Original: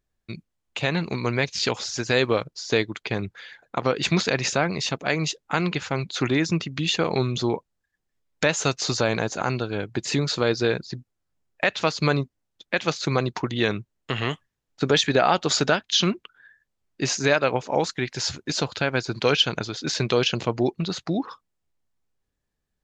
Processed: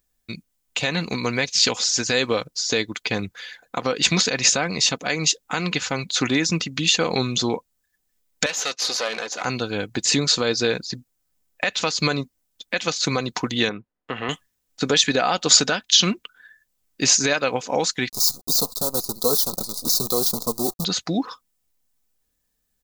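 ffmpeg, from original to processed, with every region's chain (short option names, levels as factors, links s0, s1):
-filter_complex "[0:a]asettb=1/sr,asplit=3[s0][s1][s2];[s0]atrim=end=8.464[s3];[s1]atrim=start=8.46:end=9.45,asetpts=PTS-STARTPTS,afade=t=in:d=0.004:c=qsin,afade=t=out:st=0.986:d=0.004:c=qsin,aeval=exprs='clip(val(0),-1,0.0335)':c=same,highpass=400,lowpass=4800[s4];[s2]atrim=start=9.446[s5];[s3][s4]acrossfade=d=0.004:c1=hsin:c2=qsin[s6];[s6][s5]acrossfade=d=0.004:c1=qsin:c2=hsin,asettb=1/sr,asplit=3[s7][s8][s9];[s7]atrim=end=13.694[s10];[s8]atrim=start=13.69:end=14.29,asetpts=PTS-STARTPTS,afade=t=in:d=0.004:c=qsin,afade=t=out:st=0.596:d=0.004:c=qsin,lowpass=1500,lowshelf=f=170:g=-12[s11];[s9]atrim=start=14.286[s12];[s10][s11]acrossfade=d=0.004:c1=hsin:c2=qsin[s13];[s13][s12]acrossfade=d=0.004:c1=qsin:c2=hsin,asettb=1/sr,asplit=3[s14][s15][s16];[s14]atrim=end=18.094[s17];[s15]atrim=start=18.09:end=20.85,asetpts=PTS-STARTPTS,afade=t=in:d=0.004:c=qsin,afade=t=out:st=2.756:d=0.004:c=qsin,flanger=delay=4.4:depth=1.1:regen=47:speed=1.7:shape=triangular,acrusher=bits=6:dc=4:mix=0:aa=0.000001,asuperstop=centerf=2200:order=12:qfactor=0.84[s18];[s16]atrim=start=20.846[s19];[s17][s18]acrossfade=d=0.004:c1=hsin:c2=qsin[s20];[s20][s19]acrossfade=d=0.004:c1=qsin:c2=hsin,aecho=1:1:4:0.35,alimiter=limit=0.282:level=0:latency=1:release=164,aemphasis=mode=production:type=75kf,volume=1.12"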